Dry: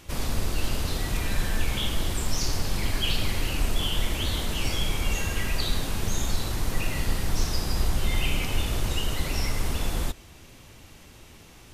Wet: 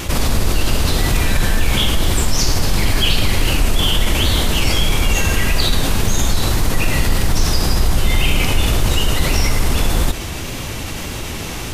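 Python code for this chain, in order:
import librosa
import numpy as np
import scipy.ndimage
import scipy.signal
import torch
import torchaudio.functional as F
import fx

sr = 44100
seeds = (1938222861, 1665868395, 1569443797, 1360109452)

y = fx.wow_flutter(x, sr, seeds[0], rate_hz=2.1, depth_cents=22.0)
y = fx.env_flatten(y, sr, amount_pct=50)
y = y * 10.0 ** (8.0 / 20.0)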